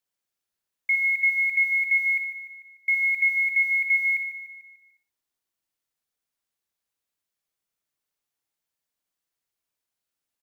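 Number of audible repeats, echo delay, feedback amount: 8, 62 ms, no regular repeats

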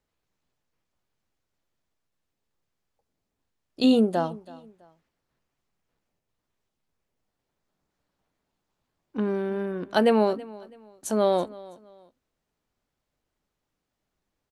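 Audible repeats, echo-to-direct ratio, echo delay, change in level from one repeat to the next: 2, -20.0 dB, 328 ms, -10.0 dB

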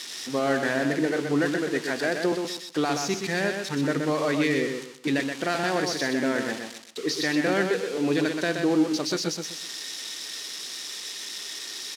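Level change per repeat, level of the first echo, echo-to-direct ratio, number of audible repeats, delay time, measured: -11.0 dB, -5.5 dB, -5.0 dB, 3, 125 ms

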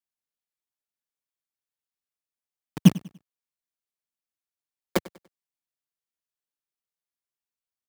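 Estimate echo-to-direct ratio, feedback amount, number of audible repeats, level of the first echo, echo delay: -19.0 dB, 34%, 2, -19.5 dB, 97 ms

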